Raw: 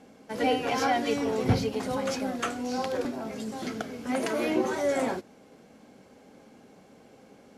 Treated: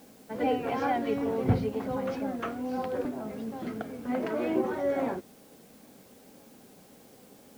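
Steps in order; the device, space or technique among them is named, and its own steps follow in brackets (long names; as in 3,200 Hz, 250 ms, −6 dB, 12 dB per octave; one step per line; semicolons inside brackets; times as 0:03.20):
cassette deck with a dirty head (head-to-tape spacing loss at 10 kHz 33 dB; tape wow and flutter; white noise bed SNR 28 dB)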